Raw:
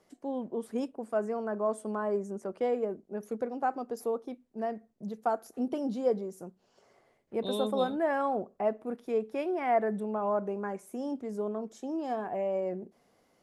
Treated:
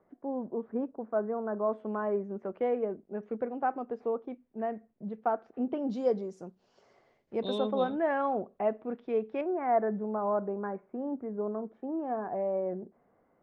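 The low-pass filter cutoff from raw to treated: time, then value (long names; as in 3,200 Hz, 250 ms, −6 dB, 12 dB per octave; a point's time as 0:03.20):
low-pass filter 24 dB per octave
1,600 Hz
from 0:01.73 2,700 Hz
from 0:05.90 6,200 Hz
from 0:07.58 3,400 Hz
from 0:09.41 1,700 Hz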